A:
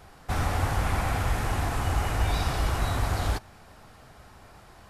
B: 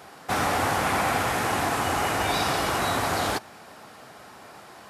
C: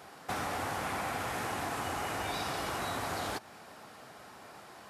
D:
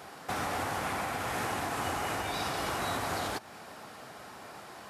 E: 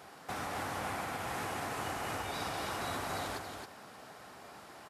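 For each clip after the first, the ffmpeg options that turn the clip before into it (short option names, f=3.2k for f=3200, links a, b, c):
-af "highpass=220,volume=7dB"
-af "acompressor=threshold=-29dB:ratio=3,volume=-5dB"
-af "alimiter=level_in=3dB:limit=-24dB:level=0:latency=1:release=298,volume=-3dB,volume=4dB"
-af "aecho=1:1:274:0.531,volume=-5.5dB"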